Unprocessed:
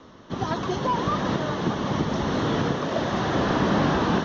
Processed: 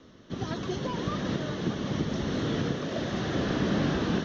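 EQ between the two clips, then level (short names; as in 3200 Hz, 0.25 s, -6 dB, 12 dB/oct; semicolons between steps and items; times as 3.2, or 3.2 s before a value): bell 940 Hz -10.5 dB 1 oct; -3.5 dB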